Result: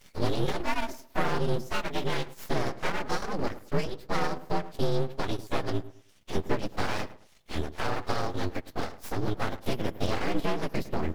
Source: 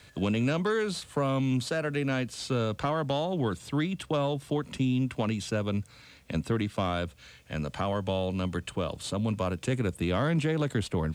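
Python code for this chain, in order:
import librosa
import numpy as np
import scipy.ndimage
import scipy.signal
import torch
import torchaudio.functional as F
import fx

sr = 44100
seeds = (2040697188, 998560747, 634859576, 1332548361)

y = fx.partial_stretch(x, sr, pct=113)
y = fx.transient(y, sr, attack_db=4, sustain_db=-12)
y = fx.echo_filtered(y, sr, ms=106, feedback_pct=31, hz=1700.0, wet_db=-15)
y = np.abs(y)
y = y * 10.0 ** (3.0 / 20.0)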